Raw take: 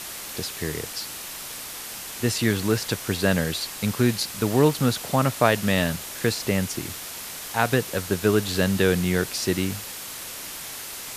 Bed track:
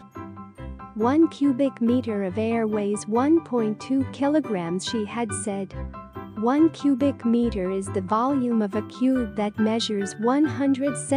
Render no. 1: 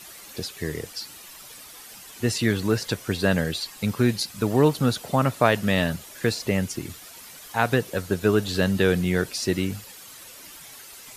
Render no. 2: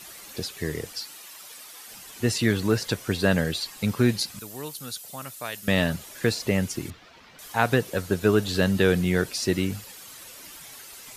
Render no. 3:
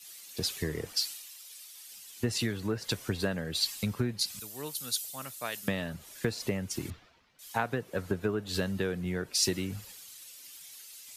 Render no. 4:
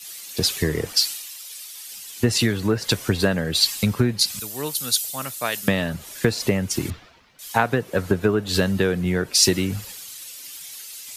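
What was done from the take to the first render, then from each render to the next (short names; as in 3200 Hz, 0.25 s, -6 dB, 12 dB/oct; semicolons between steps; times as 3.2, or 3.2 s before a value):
denoiser 11 dB, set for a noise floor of -36 dBFS
1.01–1.88 HPF 460 Hz 6 dB/oct; 4.39–5.68 pre-emphasis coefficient 0.9; 6.9–7.39 air absorption 230 m
compressor 16:1, threshold -28 dBFS, peak gain reduction 14 dB; three-band expander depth 100%
gain +11 dB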